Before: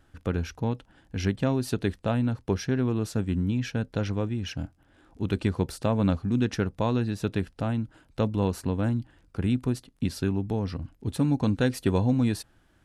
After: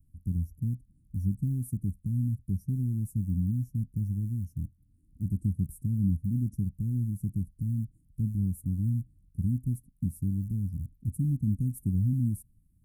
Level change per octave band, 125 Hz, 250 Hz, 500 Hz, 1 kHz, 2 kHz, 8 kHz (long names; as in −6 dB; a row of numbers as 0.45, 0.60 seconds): 0.0 dB, −6.0 dB, below −25 dB, below −40 dB, below −40 dB, can't be measured